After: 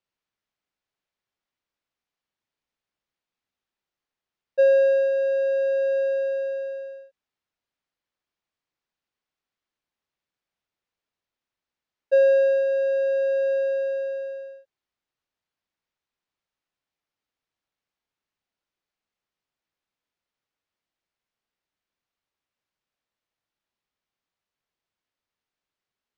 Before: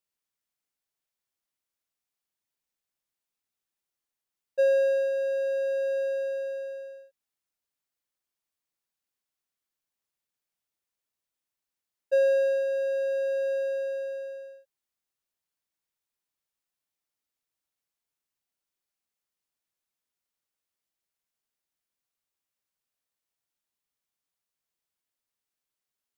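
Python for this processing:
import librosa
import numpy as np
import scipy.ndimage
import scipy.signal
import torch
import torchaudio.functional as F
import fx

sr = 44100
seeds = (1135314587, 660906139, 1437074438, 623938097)

y = fx.air_absorb(x, sr, metres=150.0)
y = y * 10.0 ** (5.5 / 20.0)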